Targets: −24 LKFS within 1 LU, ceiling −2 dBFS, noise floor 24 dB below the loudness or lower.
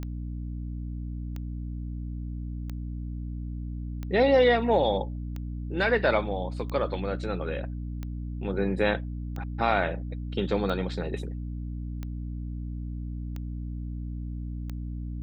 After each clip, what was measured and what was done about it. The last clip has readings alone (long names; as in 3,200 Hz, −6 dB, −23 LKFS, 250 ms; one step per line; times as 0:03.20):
number of clicks 12; mains hum 60 Hz; hum harmonics up to 300 Hz; level of the hum −31 dBFS; integrated loudness −30.0 LKFS; sample peak −10.5 dBFS; target loudness −24.0 LKFS
→ click removal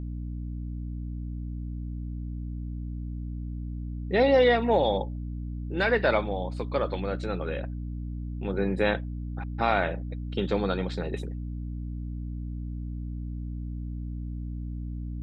number of clicks 0; mains hum 60 Hz; hum harmonics up to 300 Hz; level of the hum −31 dBFS
→ mains-hum notches 60/120/180/240/300 Hz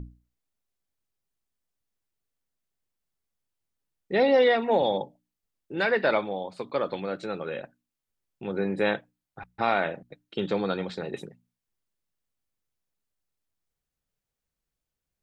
mains hum none found; integrated loudness −27.0 LKFS; sample peak −11.0 dBFS; target loudness −24.0 LKFS
→ level +3 dB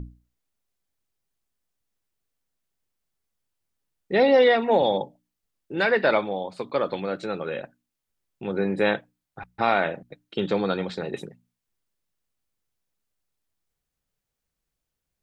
integrated loudness −24.0 LKFS; sample peak −8.0 dBFS; background noise floor −84 dBFS